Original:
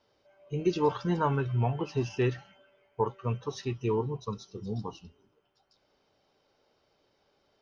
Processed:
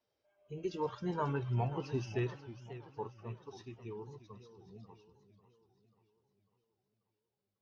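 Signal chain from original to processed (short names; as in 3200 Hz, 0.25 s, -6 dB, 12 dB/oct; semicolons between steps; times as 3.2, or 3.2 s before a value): bin magnitudes rounded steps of 15 dB; Doppler pass-by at 1.67, 10 m/s, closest 6.6 m; warbling echo 0.542 s, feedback 49%, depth 175 cents, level -14 dB; gain -5.5 dB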